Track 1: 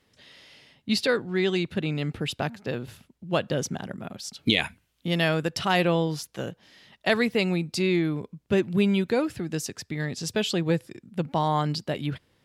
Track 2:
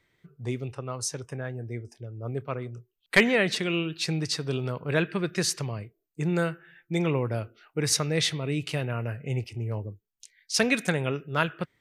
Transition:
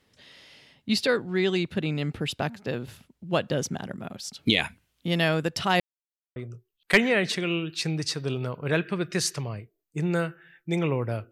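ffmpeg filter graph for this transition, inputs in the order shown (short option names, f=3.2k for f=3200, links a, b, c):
-filter_complex "[0:a]apad=whole_dur=11.31,atrim=end=11.31,asplit=2[a][b];[a]atrim=end=5.8,asetpts=PTS-STARTPTS,afade=t=out:st=5.796:d=0.004:c=hsin[c];[b]atrim=start=5.8:end=6.36,asetpts=PTS-STARTPTS,volume=0[d];[1:a]atrim=start=2.59:end=7.54,asetpts=PTS-STARTPTS,afade=t=in:d=0.004:c=hsin[e];[c][d][e]concat=n=3:v=0:a=1"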